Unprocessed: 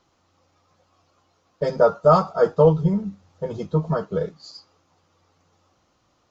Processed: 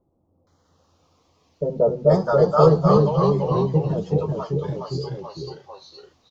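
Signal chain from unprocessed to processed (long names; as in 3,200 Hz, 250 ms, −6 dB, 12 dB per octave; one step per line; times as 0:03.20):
auto-filter notch saw down 0.62 Hz 820–2,800 Hz
multiband delay without the direct sound lows, highs 470 ms, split 690 Hz
delay with pitch and tempo change per echo 155 ms, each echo −1 semitone, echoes 3
level +1 dB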